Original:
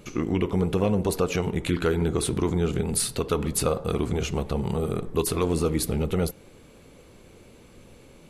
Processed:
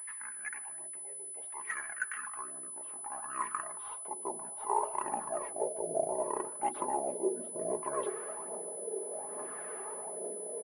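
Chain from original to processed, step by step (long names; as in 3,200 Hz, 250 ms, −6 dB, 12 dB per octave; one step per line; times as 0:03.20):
comb filter 3.7 ms, depth 51%
hum removal 95.58 Hz, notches 7
reversed playback
downward compressor 12 to 1, threshold −36 dBFS, peak gain reduction 18.5 dB
reversed playback
high-pass filter sweep 2,500 Hz → 730 Hz, 0:01.05–0:04.78
in parallel at +0.5 dB: soft clipping −34 dBFS, distortion −16 dB
on the sum: auto-filter low-pass sine 0.83 Hz 640–1,800 Hz
far-end echo of a speakerphone 120 ms, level −22 dB
phase shifter 1.5 Hz, delay 2.1 ms, feedback 42%
speed change −22%
switching amplifier with a slow clock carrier 10,000 Hz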